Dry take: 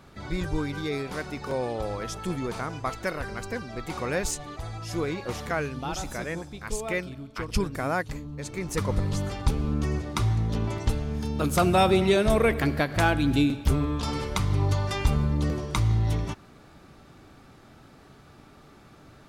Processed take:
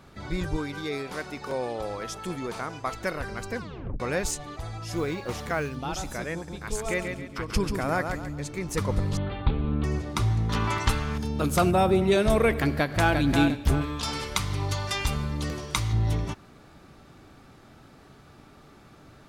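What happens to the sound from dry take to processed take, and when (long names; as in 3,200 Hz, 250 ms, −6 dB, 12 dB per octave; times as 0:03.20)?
0:00.56–0:02.92: low-shelf EQ 180 Hz −8.5 dB
0:03.58: tape stop 0.42 s
0:04.96–0:05.76: floating-point word with a short mantissa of 4 bits
0:06.34–0:08.52: repeating echo 137 ms, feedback 35%, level −6 dB
0:09.17–0:09.84: Butterworth low-pass 4,000 Hz 72 dB per octave
0:10.49–0:11.18: drawn EQ curve 660 Hz 0 dB, 1,100 Hz +14 dB, 5,400 Hz +7 dB
0:11.71–0:12.12: parametric band 4,100 Hz −8.5 dB 2.8 octaves
0:12.72–0:13.14: delay throw 350 ms, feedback 30%, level −5 dB
0:13.81–0:15.93: tilt shelving filter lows −5.5 dB, about 1,100 Hz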